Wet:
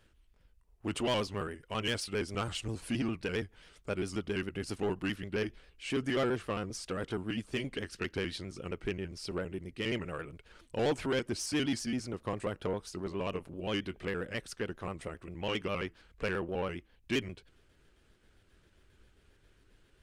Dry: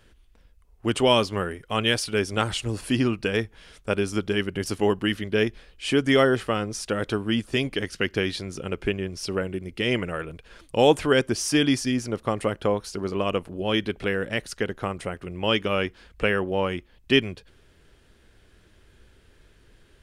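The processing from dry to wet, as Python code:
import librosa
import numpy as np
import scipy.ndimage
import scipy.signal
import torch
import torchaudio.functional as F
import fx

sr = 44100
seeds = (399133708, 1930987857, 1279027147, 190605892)

y = fx.pitch_trill(x, sr, semitones=-1.5, every_ms=67)
y = 10.0 ** (-16.5 / 20.0) * np.tanh(y / 10.0 ** (-16.5 / 20.0))
y = y * 10.0 ** (-8.0 / 20.0)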